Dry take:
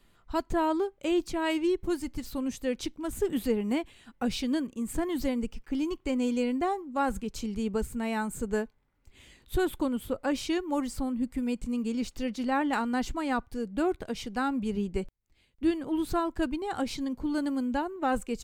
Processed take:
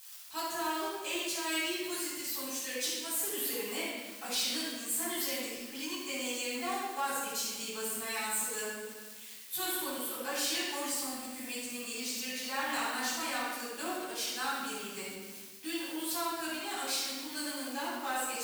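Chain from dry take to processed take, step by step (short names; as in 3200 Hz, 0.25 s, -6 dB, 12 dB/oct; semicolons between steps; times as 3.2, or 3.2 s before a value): G.711 law mismatch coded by A; crackle 120/s -43 dBFS; in parallel at -2.5 dB: limiter -27.5 dBFS, peak gain reduction 10.5 dB; on the sum: differentiator; split-band echo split 1600 Hz, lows 0.104 s, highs 0.143 s, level -15 dB; shoebox room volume 900 m³, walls mixed, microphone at 8.7 m; soft clip -23.5 dBFS, distortion -19 dB; reverse; upward compressor, threshold -39 dBFS; reverse; low shelf 82 Hz -9 dB; gain -2 dB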